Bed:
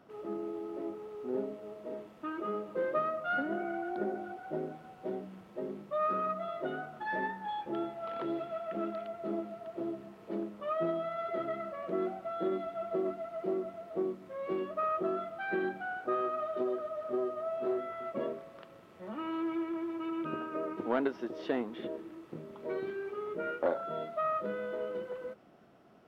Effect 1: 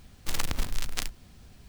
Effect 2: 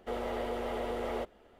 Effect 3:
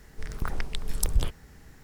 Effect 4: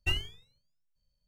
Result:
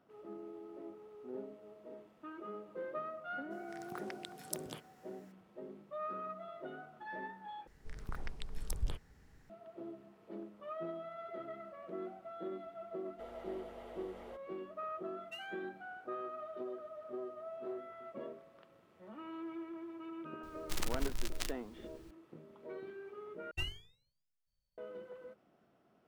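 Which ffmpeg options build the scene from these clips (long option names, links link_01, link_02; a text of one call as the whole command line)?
ffmpeg -i bed.wav -i cue0.wav -i cue1.wav -i cue2.wav -i cue3.wav -filter_complex "[3:a]asplit=2[link_01][link_02];[4:a]asplit=2[link_03][link_04];[0:a]volume=-10dB[link_05];[link_01]highpass=frequency=160:width=0.5412,highpass=frequency=160:width=1.3066[link_06];[link_02]highshelf=frequency=7300:gain=-7.5[link_07];[link_03]highpass=1200[link_08];[link_05]asplit=3[link_09][link_10][link_11];[link_09]atrim=end=7.674[link_12];[link_07]atrim=end=1.83,asetpts=PTS-STARTPTS,volume=-11.5dB[link_13];[link_10]atrim=start=9.496:end=23.514[link_14];[link_04]atrim=end=1.27,asetpts=PTS-STARTPTS,volume=-9dB[link_15];[link_11]atrim=start=24.776[link_16];[link_06]atrim=end=1.83,asetpts=PTS-STARTPTS,volume=-11dB,afade=type=in:duration=0.02,afade=type=out:start_time=1.81:duration=0.02,adelay=3500[link_17];[2:a]atrim=end=1.59,asetpts=PTS-STARTPTS,volume=-16dB,afade=type=in:duration=0.004:curve=hsin,afade=type=out:start_time=1.586:duration=0.004:curve=hsin,adelay=13120[link_18];[link_08]atrim=end=1.27,asetpts=PTS-STARTPTS,volume=-16.5dB,afade=type=in:duration=0.004:curve=hsin,afade=type=out:start_time=1.266:duration=0.004:curve=hsin,adelay=15250[link_19];[1:a]atrim=end=1.68,asetpts=PTS-STARTPTS,volume=-8dB,afade=type=in:duration=0.004:curve=hsin,afade=type=out:start_time=1.676:duration=0.004:curve=hsin,adelay=20430[link_20];[link_12][link_13]acrossfade=duration=0.004:curve1=hsin:curve2=hsin[link_21];[link_21][link_14]acrossfade=duration=0.004:curve1=hsin:curve2=hsin[link_22];[link_22][link_15]acrossfade=duration=0.004:curve1=hsin:curve2=hsin[link_23];[link_23][link_16]acrossfade=duration=0.004:curve1=hsin:curve2=hsin[link_24];[link_24][link_17][link_18][link_19][link_20]amix=inputs=5:normalize=0" out.wav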